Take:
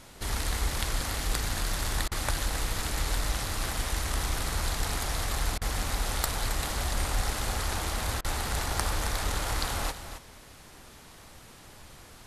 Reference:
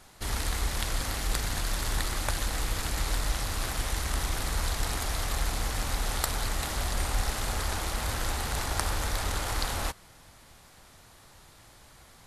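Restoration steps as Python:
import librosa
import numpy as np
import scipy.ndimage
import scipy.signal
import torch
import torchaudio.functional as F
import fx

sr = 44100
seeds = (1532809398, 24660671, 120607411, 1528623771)

y = fx.fix_declip(x, sr, threshold_db=-12.0)
y = fx.fix_interpolate(y, sr, at_s=(2.08, 5.58, 8.21), length_ms=34.0)
y = fx.noise_reduce(y, sr, print_start_s=10.55, print_end_s=11.05, reduce_db=6.0)
y = fx.fix_echo_inverse(y, sr, delay_ms=269, level_db=-10.5)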